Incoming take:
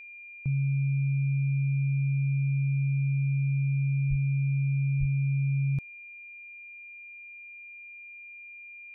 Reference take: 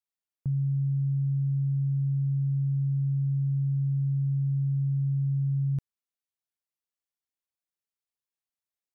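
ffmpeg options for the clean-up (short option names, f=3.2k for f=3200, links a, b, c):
-filter_complex "[0:a]bandreject=f=2.4k:w=30,asplit=3[a][b][c];[a]afade=t=out:st=4.09:d=0.02[d];[b]highpass=f=140:w=0.5412,highpass=f=140:w=1.3066,afade=t=in:st=4.09:d=0.02,afade=t=out:st=4.21:d=0.02[e];[c]afade=t=in:st=4.21:d=0.02[f];[d][e][f]amix=inputs=3:normalize=0,asplit=3[g][h][i];[g]afade=t=out:st=4.99:d=0.02[j];[h]highpass=f=140:w=0.5412,highpass=f=140:w=1.3066,afade=t=in:st=4.99:d=0.02,afade=t=out:st=5.11:d=0.02[k];[i]afade=t=in:st=5.11:d=0.02[l];[j][k][l]amix=inputs=3:normalize=0"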